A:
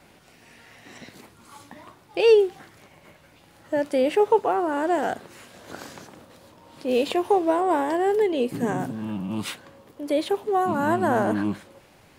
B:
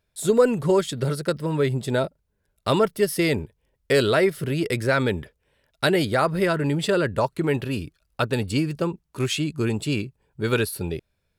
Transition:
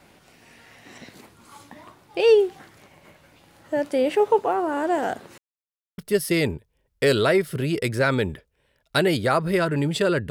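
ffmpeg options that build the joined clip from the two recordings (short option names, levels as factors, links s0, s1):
-filter_complex "[0:a]apad=whole_dur=10.3,atrim=end=10.3,asplit=2[s0][s1];[s0]atrim=end=5.38,asetpts=PTS-STARTPTS,afade=t=out:st=5.376:d=0.004:c=hsin[s2];[s1]atrim=start=5.38:end=5.98,asetpts=PTS-STARTPTS,volume=0[s3];[1:a]atrim=start=2.86:end=7.18,asetpts=PTS-STARTPTS,afade=t=in:d=0.004:c=hsin[s4];[s2][s3][s4]concat=n=3:v=0:a=1"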